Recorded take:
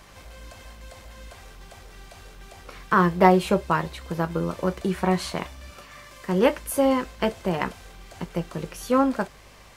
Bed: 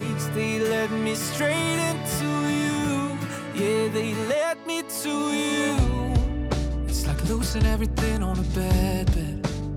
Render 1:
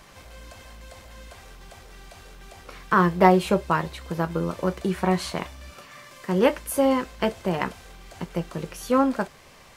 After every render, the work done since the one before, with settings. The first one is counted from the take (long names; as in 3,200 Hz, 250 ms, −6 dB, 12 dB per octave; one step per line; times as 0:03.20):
hum removal 50 Hz, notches 2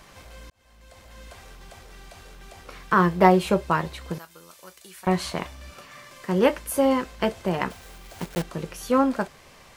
0:00.50–0:01.28: fade in
0:04.18–0:05.07: first-order pre-emphasis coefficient 0.97
0:07.70–0:08.44: one scale factor per block 3 bits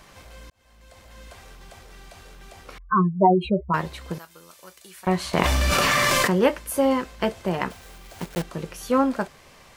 0:02.78–0:03.74: expanding power law on the bin magnitudes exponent 3.4
0:05.33–0:06.41: envelope flattener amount 100%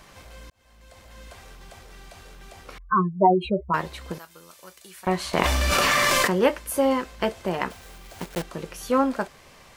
dynamic equaliser 130 Hz, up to −6 dB, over −38 dBFS, Q 0.98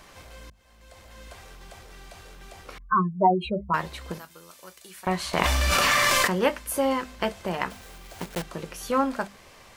mains-hum notches 50/100/150/200/250 Hz
dynamic equaliser 380 Hz, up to −5 dB, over −34 dBFS, Q 0.99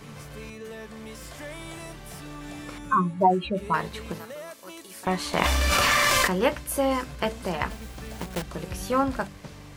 mix in bed −16 dB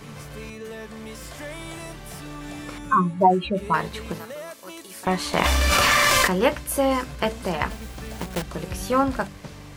level +3 dB
brickwall limiter −2 dBFS, peak gain reduction 2 dB